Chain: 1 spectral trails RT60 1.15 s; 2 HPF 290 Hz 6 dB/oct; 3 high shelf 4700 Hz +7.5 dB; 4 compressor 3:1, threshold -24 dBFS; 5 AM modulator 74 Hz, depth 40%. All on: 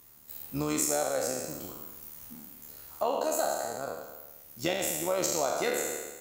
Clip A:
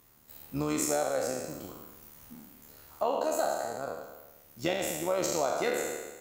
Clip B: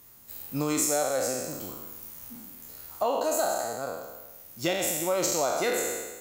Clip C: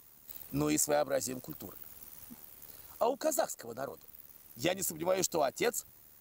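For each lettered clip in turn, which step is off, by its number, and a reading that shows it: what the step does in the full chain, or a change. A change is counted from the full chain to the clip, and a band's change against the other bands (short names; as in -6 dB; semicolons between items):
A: 3, 8 kHz band -4.5 dB; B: 5, crest factor change -2.5 dB; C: 1, 125 Hz band +3.0 dB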